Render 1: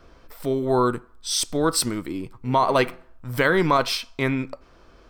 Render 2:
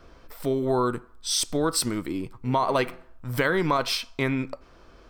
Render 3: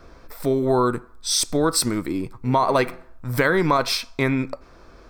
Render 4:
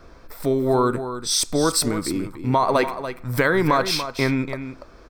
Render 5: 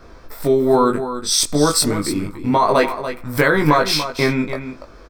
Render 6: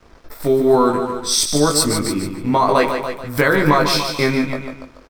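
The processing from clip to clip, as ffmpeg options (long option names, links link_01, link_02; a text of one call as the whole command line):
ffmpeg -i in.wav -af "acompressor=threshold=-21dB:ratio=2.5" out.wav
ffmpeg -i in.wav -af "equalizer=frequency=3000:width_type=o:width=0.21:gain=-10,volume=4.5dB" out.wav
ffmpeg -i in.wav -af "aecho=1:1:288:0.299" out.wav
ffmpeg -i in.wav -filter_complex "[0:a]asplit=2[link_01][link_02];[link_02]adelay=20,volume=-3dB[link_03];[link_01][link_03]amix=inputs=2:normalize=0,volume=2.5dB" out.wav
ffmpeg -i in.wav -af "aeval=exprs='sgn(val(0))*max(abs(val(0))-0.00596,0)':channel_layout=same,aecho=1:1:147|294|441:0.422|0.0759|0.0137" out.wav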